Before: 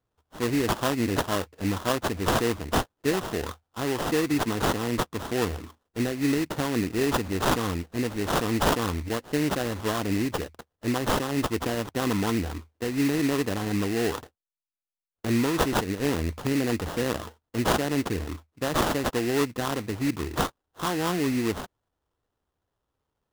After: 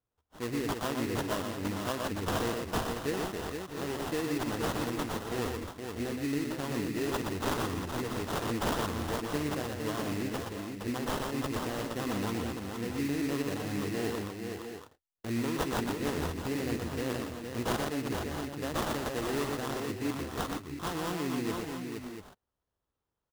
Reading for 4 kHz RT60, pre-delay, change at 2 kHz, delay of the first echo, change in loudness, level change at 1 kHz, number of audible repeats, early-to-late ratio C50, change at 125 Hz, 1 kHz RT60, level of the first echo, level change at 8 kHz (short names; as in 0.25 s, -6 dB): none, none, -6.5 dB, 0.121 s, -6.5 dB, -6.5 dB, 4, none, -6.5 dB, none, -4.5 dB, -6.5 dB